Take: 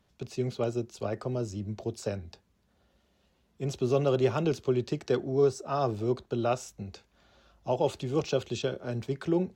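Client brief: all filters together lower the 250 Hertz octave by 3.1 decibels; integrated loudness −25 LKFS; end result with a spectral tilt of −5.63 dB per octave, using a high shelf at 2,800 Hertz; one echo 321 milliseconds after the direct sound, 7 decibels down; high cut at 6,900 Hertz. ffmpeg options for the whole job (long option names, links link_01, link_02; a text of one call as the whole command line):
ffmpeg -i in.wav -af "lowpass=6900,equalizer=frequency=250:width_type=o:gain=-5,highshelf=frequency=2800:gain=4.5,aecho=1:1:321:0.447,volume=6dB" out.wav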